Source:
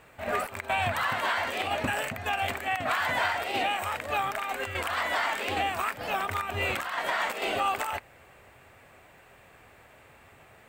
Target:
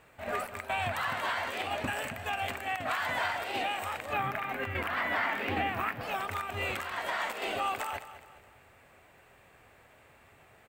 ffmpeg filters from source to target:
ffmpeg -i in.wav -filter_complex "[0:a]asettb=1/sr,asplit=3[link_01][link_02][link_03];[link_01]atrim=end=4.134[link_04];[link_02]atrim=start=4.13:end=6.01,asetpts=PTS-STARTPTS,afade=type=in:duration=0.004:curve=qsin,afade=type=out:start_time=1.876:duration=0.004:curve=qsin,equalizer=frequency=125:width_type=o:width=1:gain=11,equalizer=frequency=250:width_type=o:width=1:gain=7,equalizer=frequency=2000:width_type=o:width=1:gain=5,equalizer=frequency=4000:width_type=o:width=1:gain=-4,equalizer=frequency=8000:width_type=o:width=1:gain=-11[link_05];[link_03]atrim=start=6.006[link_06];[link_04][link_05]acrossfade=duration=0.004:curve1=hsin:curve2=qsin[link_07];[link_07][link_06]acrossfade=duration=0.004:curve1=qsin:curve2=hsin,aecho=1:1:208|416|624|832:0.211|0.0803|0.0305|0.0116,volume=-4.5dB" out.wav

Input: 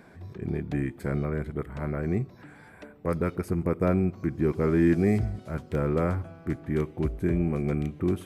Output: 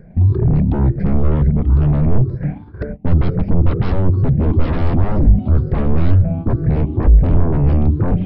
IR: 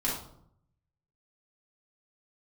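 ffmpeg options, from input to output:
-af "afftfilt=real='re*pow(10,15/40*sin(2*PI*(0.55*log(max(b,1)*sr/1024/100)/log(2)-(2.1)*(pts-256)/sr)))':imag='im*pow(10,15/40*sin(2*PI*(0.55*log(max(b,1)*sr/1024/100)/log(2)-(2.1)*(pts-256)/sr)))':win_size=1024:overlap=0.75,aresample=11025,aeval=exprs='0.376*sin(PI/2*7.94*val(0)/0.376)':channel_layout=same,aresample=44100,agate=range=-21dB:threshold=-24dB:ratio=16:detection=peak,tiltshelf=frequency=970:gain=7,crystalizer=i=2:c=0,aeval=exprs='0.841*(cos(1*acos(clip(val(0)/0.841,-1,1)))-cos(1*PI/2))+0.00841*(cos(5*acos(clip(val(0)/0.841,-1,1)))-cos(5*PI/2))':channel_layout=same,alimiter=limit=-13dB:level=0:latency=1:release=394,aemphasis=mode=reproduction:type=riaa,volume=-6.5dB"

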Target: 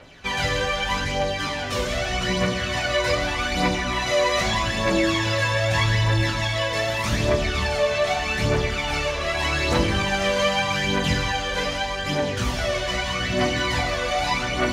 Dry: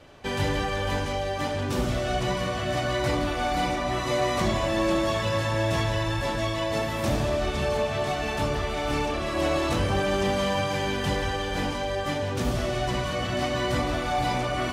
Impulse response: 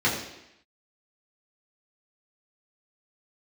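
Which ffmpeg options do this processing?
-filter_complex "[0:a]equalizer=frequency=3600:width=0.34:gain=9,aphaser=in_gain=1:out_gain=1:delay=2:decay=0.6:speed=0.82:type=triangular,asplit=2[link_01][link_02];[1:a]atrim=start_sample=2205,highshelf=frequency=4000:gain=10.5[link_03];[link_02][link_03]afir=irnorm=-1:irlink=0,volume=-19dB[link_04];[link_01][link_04]amix=inputs=2:normalize=0,volume=-4dB"

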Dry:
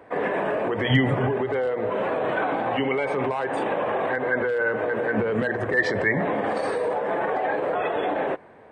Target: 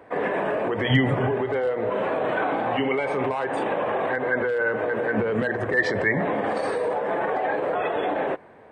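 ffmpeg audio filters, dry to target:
ffmpeg -i in.wav -filter_complex "[0:a]asettb=1/sr,asplit=3[link_01][link_02][link_03];[link_01]atrim=end=1.154[link_04];[link_02]atrim=start=1.15:end=3.45,asetpts=PTS-STARTPTS,afade=type=in:duration=0.004:curve=qsin,afade=type=out:start_time=2.296:duration=0.004:curve=qsin,asplit=2[link_05][link_06];[link_06]adelay=34,volume=-12dB[link_07];[link_05][link_07]amix=inputs=2:normalize=0,atrim=end_sample=101430[link_08];[link_03]atrim=start=3.446[link_09];[link_04][link_08]acrossfade=duration=0.004:curve1=hsin:curve2=qsin[link_10];[link_10][link_09]acrossfade=duration=0.004:curve1=qsin:curve2=hsin" out.wav

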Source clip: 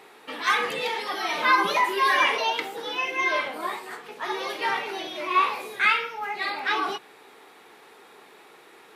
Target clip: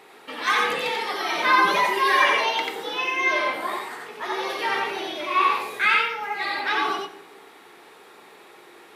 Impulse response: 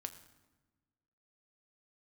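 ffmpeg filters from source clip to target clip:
-filter_complex "[0:a]asplit=2[link_01][link_02];[1:a]atrim=start_sample=2205,asetrate=57330,aresample=44100,adelay=89[link_03];[link_02][link_03]afir=irnorm=-1:irlink=0,volume=4dB[link_04];[link_01][link_04]amix=inputs=2:normalize=0"

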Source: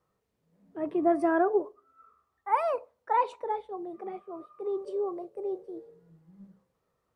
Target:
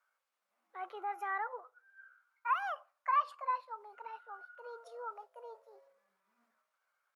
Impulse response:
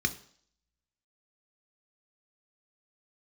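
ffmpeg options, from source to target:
-af "alimiter=limit=-21dB:level=0:latency=1:release=362,highpass=frequency=1000:width_type=q:width=1.6,asetrate=52444,aresample=44100,atempo=0.840896,volume=-3dB"

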